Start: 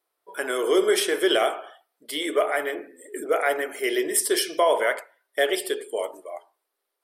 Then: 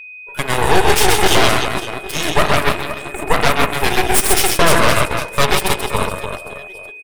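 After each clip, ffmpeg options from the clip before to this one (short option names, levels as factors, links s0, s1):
-af "aecho=1:1:130|299|518.7|804.3|1176:0.631|0.398|0.251|0.158|0.1,aeval=exprs='0.531*(cos(1*acos(clip(val(0)/0.531,-1,1)))-cos(1*PI/2))+0.237*(cos(8*acos(clip(val(0)/0.531,-1,1)))-cos(8*PI/2))':c=same,aeval=exprs='val(0)+0.02*sin(2*PI*2500*n/s)':c=same,volume=1.19"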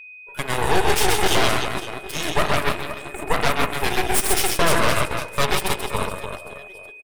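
-af "aecho=1:1:145:0.0891,volume=0.501"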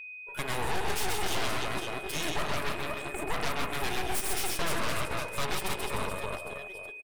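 -af "acompressor=threshold=0.0891:ratio=2,asoftclip=type=tanh:threshold=0.1,volume=0.794"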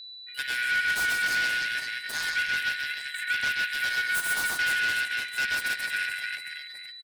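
-af "afftfilt=real='real(if(lt(b,272),68*(eq(floor(b/68),0)*3+eq(floor(b/68),1)*0+eq(floor(b/68),2)*1+eq(floor(b/68),3)*2)+mod(b,68),b),0)':imag='imag(if(lt(b,272),68*(eq(floor(b/68),0)*3+eq(floor(b/68),1)*0+eq(floor(b/68),2)*1+eq(floor(b/68),3)*2)+mod(b,68),b),0)':win_size=2048:overlap=0.75"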